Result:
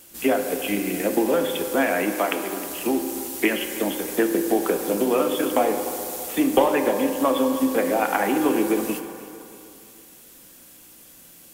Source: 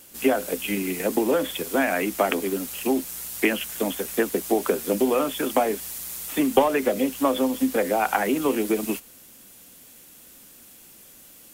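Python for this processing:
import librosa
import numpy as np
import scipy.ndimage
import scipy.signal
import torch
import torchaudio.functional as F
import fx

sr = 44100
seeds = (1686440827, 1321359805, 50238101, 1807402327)

y = fx.low_shelf(x, sr, hz=370.0, db=-10.5, at=(2.13, 2.67))
y = fx.echo_feedback(y, sr, ms=313, feedback_pct=51, wet_db=-18)
y = fx.rev_fdn(y, sr, rt60_s=2.6, lf_ratio=0.75, hf_ratio=0.35, size_ms=18.0, drr_db=5.0)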